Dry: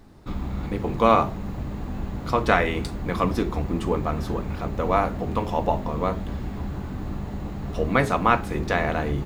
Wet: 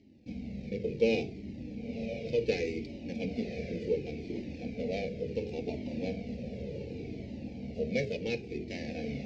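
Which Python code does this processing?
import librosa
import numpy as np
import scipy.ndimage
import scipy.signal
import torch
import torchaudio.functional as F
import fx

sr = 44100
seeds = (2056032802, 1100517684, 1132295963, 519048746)

y = scipy.ndimage.median_filter(x, 15, mode='constant')
y = scipy.signal.sosfilt(scipy.signal.cheby1(2, 1.0, [460.0, 2800.0], 'bandstop', fs=sr, output='sos'), y)
y = fx.high_shelf(y, sr, hz=2800.0, db=11.5)
y = fx.rider(y, sr, range_db=4, speed_s=2.0)
y = fx.cabinet(y, sr, low_hz=110.0, low_slope=12, high_hz=5000.0, hz=(230.0, 470.0, 790.0, 1300.0, 2300.0, 3400.0), db=(9, 8, 3, -8, 9, -6))
y = fx.echo_diffused(y, sr, ms=1059, feedback_pct=51, wet_db=-9.5)
y = fx.comb_cascade(y, sr, direction='falling', hz=0.69)
y = y * librosa.db_to_amplitude(-7.0)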